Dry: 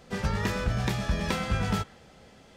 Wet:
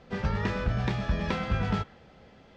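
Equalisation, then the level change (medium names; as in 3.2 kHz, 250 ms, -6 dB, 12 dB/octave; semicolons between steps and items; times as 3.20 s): distance through air 170 m; 0.0 dB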